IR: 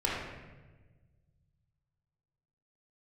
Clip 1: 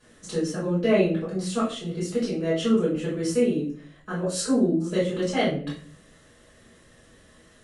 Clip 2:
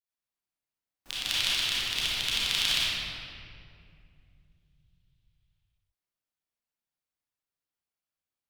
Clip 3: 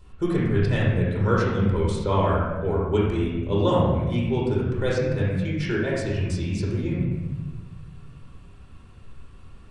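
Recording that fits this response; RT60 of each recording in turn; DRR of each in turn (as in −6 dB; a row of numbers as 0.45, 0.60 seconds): 3; 0.45, 2.4, 1.3 seconds; −10.5, −9.5, −6.5 decibels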